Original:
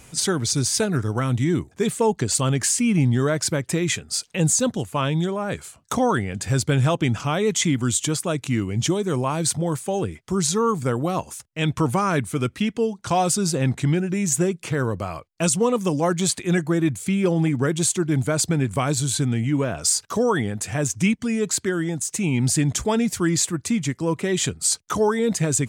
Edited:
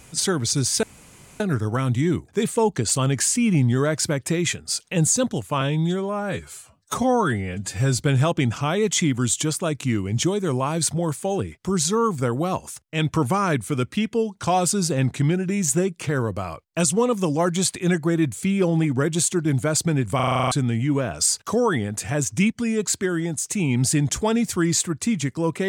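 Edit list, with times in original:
0.83 s: insert room tone 0.57 s
5.04–6.63 s: stretch 1.5×
18.79 s: stutter in place 0.04 s, 9 plays

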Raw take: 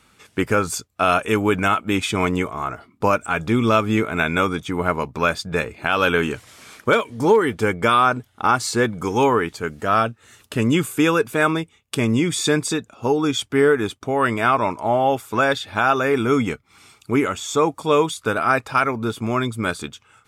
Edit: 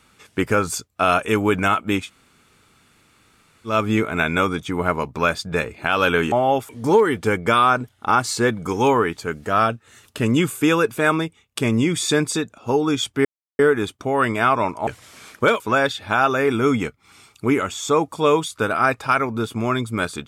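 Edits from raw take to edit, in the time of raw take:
2.02–3.72 s: room tone, crossfade 0.16 s
6.32–7.05 s: swap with 14.89–15.26 s
13.61 s: insert silence 0.34 s

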